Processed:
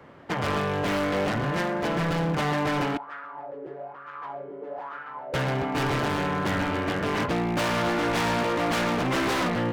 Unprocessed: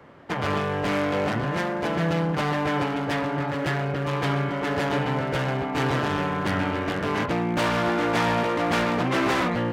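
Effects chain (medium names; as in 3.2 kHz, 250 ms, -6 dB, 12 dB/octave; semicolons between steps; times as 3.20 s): 2.97–5.34 s: wah-wah 1.1 Hz 410–1400 Hz, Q 6.3; wavefolder -20 dBFS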